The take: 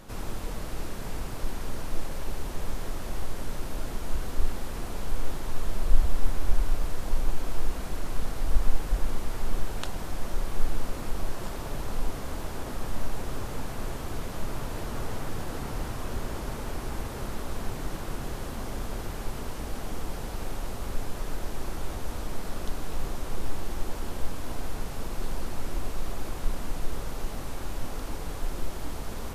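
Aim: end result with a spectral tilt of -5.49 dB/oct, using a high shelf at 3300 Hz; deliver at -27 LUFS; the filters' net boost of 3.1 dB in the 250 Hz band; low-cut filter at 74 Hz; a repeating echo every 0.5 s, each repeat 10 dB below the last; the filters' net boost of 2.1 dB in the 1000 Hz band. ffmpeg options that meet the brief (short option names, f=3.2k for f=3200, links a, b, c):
-af "highpass=74,equalizer=f=250:t=o:g=4,equalizer=f=1k:t=o:g=3,highshelf=f=3.3k:g=-6,aecho=1:1:500|1000|1500|2000:0.316|0.101|0.0324|0.0104,volume=10.5dB"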